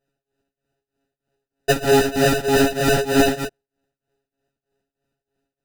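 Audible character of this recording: a buzz of ramps at a fixed pitch in blocks of 64 samples; tremolo triangle 3.2 Hz, depth 95%; aliases and images of a low sample rate 1100 Hz, jitter 0%; a shimmering, thickened sound

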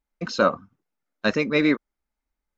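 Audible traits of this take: noise floor -86 dBFS; spectral tilt -3.5 dB/oct

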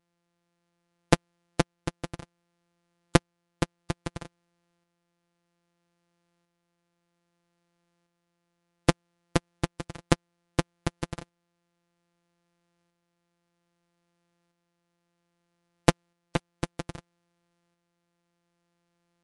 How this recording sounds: a buzz of ramps at a fixed pitch in blocks of 256 samples; tremolo saw up 0.62 Hz, depth 40%; MP3

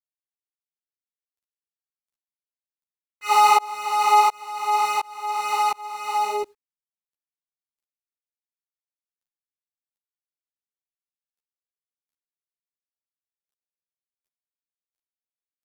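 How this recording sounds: tremolo saw up 1.4 Hz, depth 100%; a quantiser's noise floor 12-bit, dither none; a shimmering, thickened sound

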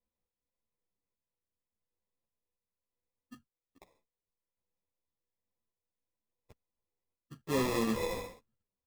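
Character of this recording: a buzz of ramps at a fixed pitch in blocks of 8 samples; random-step tremolo 3.5 Hz; aliases and images of a low sample rate 1500 Hz, jitter 0%; a shimmering, thickened sound

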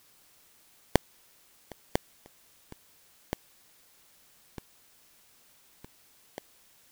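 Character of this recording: aliases and images of a low sample rate 1300 Hz, jitter 0%; tremolo saw down 5.3 Hz, depth 65%; a quantiser's noise floor 10-bit, dither triangular

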